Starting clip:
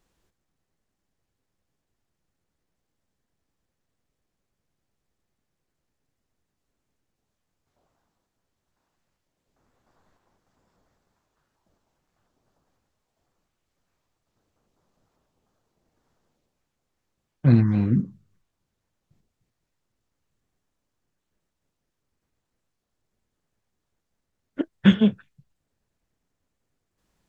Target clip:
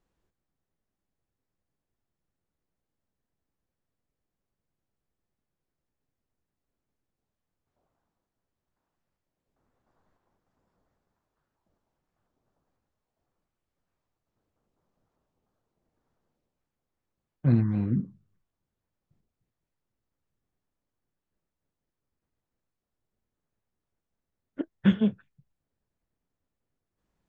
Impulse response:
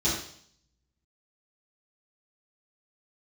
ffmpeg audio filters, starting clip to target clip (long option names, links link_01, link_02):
-af "highshelf=frequency=2700:gain=-9,volume=-5.5dB"